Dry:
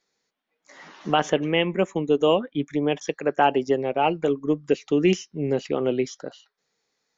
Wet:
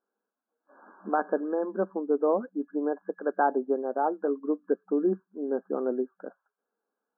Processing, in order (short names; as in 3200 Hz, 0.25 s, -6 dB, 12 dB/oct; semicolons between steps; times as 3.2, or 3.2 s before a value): FFT band-pass 190–1700 Hz; gain -5 dB